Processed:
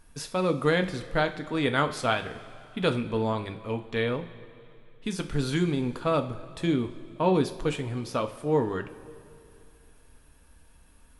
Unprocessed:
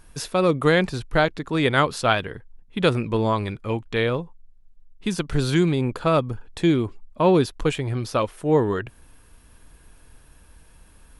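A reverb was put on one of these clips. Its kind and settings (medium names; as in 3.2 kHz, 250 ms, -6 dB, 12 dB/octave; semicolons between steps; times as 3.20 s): two-slope reverb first 0.33 s, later 2.7 s, from -16 dB, DRR 6.5 dB; trim -6.5 dB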